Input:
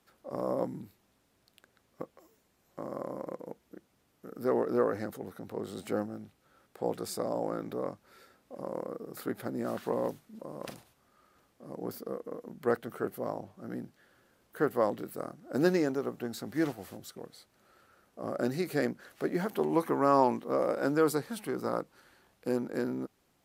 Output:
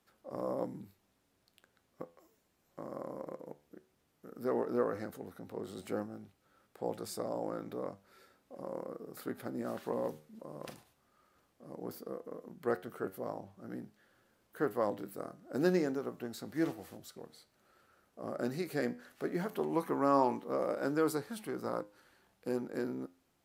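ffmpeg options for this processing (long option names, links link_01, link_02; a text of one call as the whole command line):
ffmpeg -i in.wav -af "flanger=delay=9.1:depth=4.6:regen=81:speed=0.14:shape=triangular" out.wav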